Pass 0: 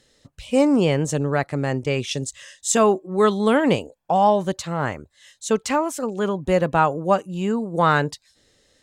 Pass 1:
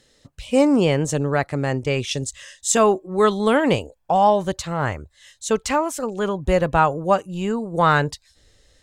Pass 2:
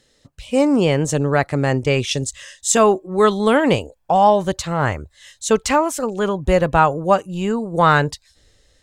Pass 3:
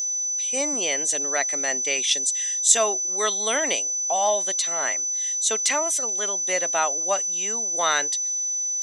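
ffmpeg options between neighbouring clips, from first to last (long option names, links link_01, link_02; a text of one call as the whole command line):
ffmpeg -i in.wav -af "asubboost=boost=5:cutoff=86,volume=1.5dB" out.wav
ffmpeg -i in.wav -af "dynaudnorm=framelen=180:gausssize=9:maxgain=11.5dB,volume=-1dB" out.wav
ffmpeg -i in.wav -af "highpass=frequency=260:width=0.5412,highpass=frequency=260:width=1.3066,equalizer=frequency=660:width_type=q:width=4:gain=8,equalizer=frequency=2000:width_type=q:width=4:gain=9,equalizer=frequency=3600:width_type=q:width=4:gain=7,lowpass=frequency=9600:width=0.5412,lowpass=frequency=9600:width=1.3066,aeval=exprs='val(0)+0.0631*sin(2*PI*6000*n/s)':channel_layout=same,crystalizer=i=7.5:c=0,volume=-16dB" out.wav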